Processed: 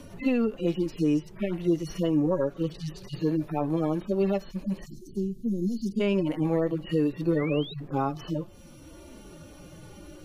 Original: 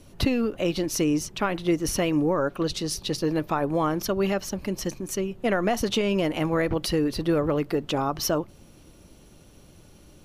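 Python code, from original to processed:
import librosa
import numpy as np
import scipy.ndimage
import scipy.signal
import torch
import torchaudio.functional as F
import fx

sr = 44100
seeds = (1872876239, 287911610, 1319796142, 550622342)

y = fx.hpss_only(x, sr, part='harmonic')
y = fx.cheby2_bandstop(y, sr, low_hz=860.0, high_hz=1800.0, order=4, stop_db=70, at=(4.85, 5.99), fade=0.02)
y = fx.spec_paint(y, sr, seeds[0], shape='rise', start_s=7.36, length_s=0.38, low_hz=1800.0, high_hz=4000.0, level_db=-40.0)
y = fx.band_squash(y, sr, depth_pct=40)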